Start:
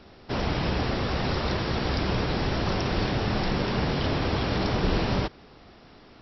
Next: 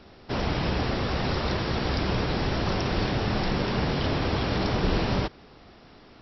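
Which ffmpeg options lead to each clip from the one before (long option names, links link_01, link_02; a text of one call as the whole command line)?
ffmpeg -i in.wav -af anull out.wav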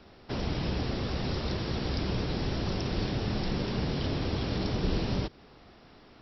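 ffmpeg -i in.wav -filter_complex "[0:a]acrossover=split=500|3000[link_01][link_02][link_03];[link_02]acompressor=threshold=-38dB:ratio=6[link_04];[link_01][link_04][link_03]amix=inputs=3:normalize=0,volume=-3.5dB" out.wav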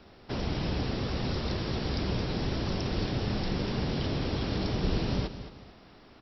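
ffmpeg -i in.wav -af "aecho=1:1:219|438|657:0.251|0.0854|0.029" out.wav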